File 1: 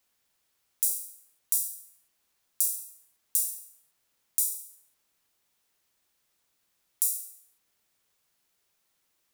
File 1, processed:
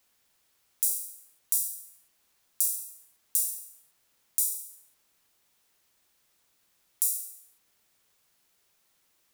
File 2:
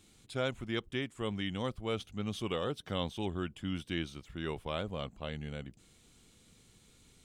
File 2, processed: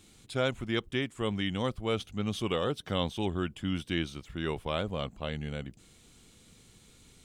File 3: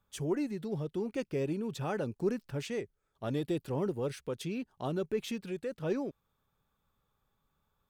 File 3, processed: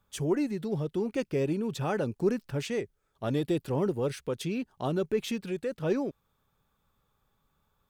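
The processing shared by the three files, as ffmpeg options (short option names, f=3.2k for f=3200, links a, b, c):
-af "alimiter=limit=-6dB:level=0:latency=1:release=423,volume=4.5dB"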